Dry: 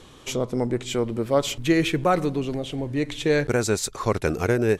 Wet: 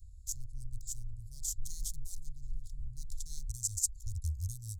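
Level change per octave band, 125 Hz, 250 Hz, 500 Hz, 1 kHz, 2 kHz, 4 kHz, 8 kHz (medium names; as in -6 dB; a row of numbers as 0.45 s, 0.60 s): -13.0 dB, under -35 dB, under -40 dB, under -40 dB, under -40 dB, -19.5 dB, -2.5 dB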